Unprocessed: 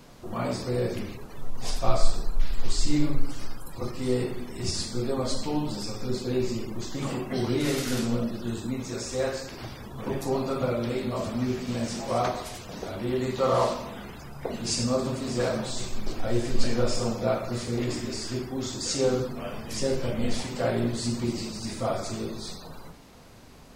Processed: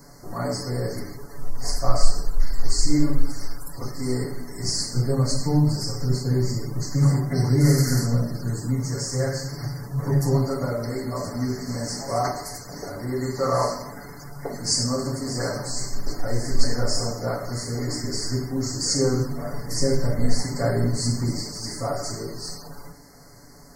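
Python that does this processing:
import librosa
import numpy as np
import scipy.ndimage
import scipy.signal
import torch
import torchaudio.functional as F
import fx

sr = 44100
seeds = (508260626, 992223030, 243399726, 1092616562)

y = fx.peak_eq(x, sr, hz=140.0, db=14.5, octaves=0.48, at=(4.95, 10.45))
y = fx.low_shelf(y, sr, hz=230.0, db=6.5, at=(18.03, 21.41))
y = scipy.signal.sosfilt(scipy.signal.cheby1(5, 1.0, [2100.0, 4300.0], 'bandstop', fs=sr, output='sos'), y)
y = fx.high_shelf(y, sr, hz=3300.0, db=7.0)
y = y + 0.68 * np.pad(y, (int(7.0 * sr / 1000.0), 0))[:len(y)]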